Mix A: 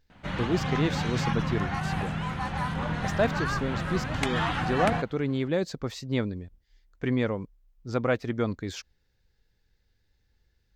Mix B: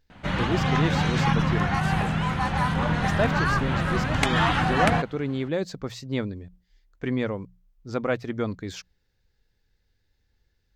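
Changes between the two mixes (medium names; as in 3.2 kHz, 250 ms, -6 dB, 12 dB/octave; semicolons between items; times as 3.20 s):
speech: add hum notches 60/120/180 Hz; background +6.0 dB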